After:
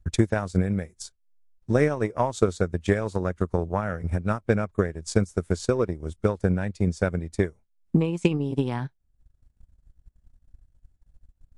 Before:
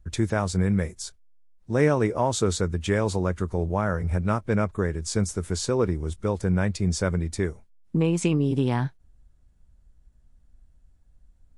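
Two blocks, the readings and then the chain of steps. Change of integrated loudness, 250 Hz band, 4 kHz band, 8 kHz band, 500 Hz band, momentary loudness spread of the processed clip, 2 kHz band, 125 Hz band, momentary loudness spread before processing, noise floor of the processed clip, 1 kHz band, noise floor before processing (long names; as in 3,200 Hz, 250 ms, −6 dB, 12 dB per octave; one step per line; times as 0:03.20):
−0.5 dB, −0.5 dB, −5.0 dB, −7.0 dB, +0.5 dB, 5 LU, −0.5 dB, −1.5 dB, 6 LU, −69 dBFS, −1.5 dB, −59 dBFS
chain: transient designer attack +11 dB, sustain −10 dB
level −4.5 dB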